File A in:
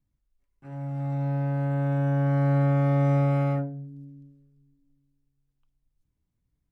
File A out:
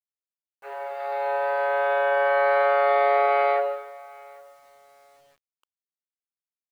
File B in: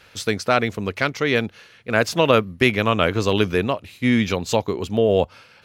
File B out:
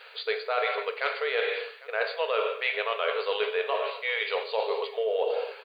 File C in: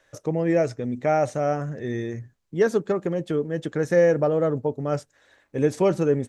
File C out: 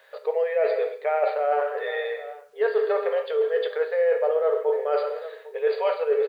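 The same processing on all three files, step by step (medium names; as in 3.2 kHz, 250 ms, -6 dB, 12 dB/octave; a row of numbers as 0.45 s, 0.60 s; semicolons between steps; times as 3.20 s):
feedback delay 803 ms, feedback 25%, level -23.5 dB; in parallel at -9 dB: overload inside the chain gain 8 dB; on the sum: FFT band-pass 400–4800 Hz; gated-style reverb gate 320 ms falling, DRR 5 dB; reverse; compression 6:1, threshold -25 dBFS; reverse; word length cut 12-bit, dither none; peak normalisation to -12 dBFS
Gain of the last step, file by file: +10.5 dB, 0.0 dB, +5.0 dB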